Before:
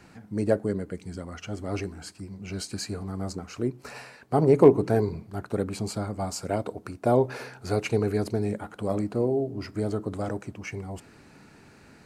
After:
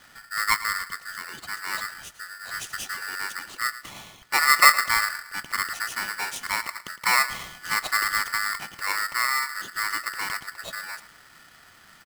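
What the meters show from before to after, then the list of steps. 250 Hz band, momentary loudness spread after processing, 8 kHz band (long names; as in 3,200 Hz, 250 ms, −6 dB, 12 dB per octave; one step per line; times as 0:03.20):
−22.5 dB, 14 LU, +11.5 dB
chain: repeating echo 110 ms, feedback 42%, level −16 dB
ring modulator with a square carrier 1,600 Hz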